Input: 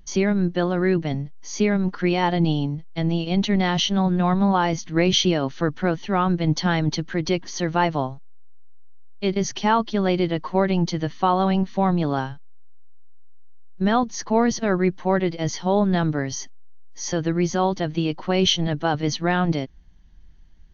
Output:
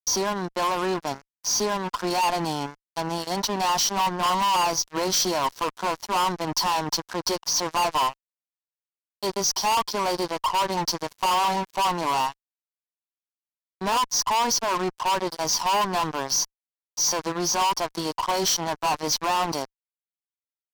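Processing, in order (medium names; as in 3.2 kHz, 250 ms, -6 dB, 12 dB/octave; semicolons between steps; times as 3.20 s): two resonant band-passes 2.3 kHz, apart 2.4 oct; fuzz box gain 44 dB, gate -53 dBFS; trim -7 dB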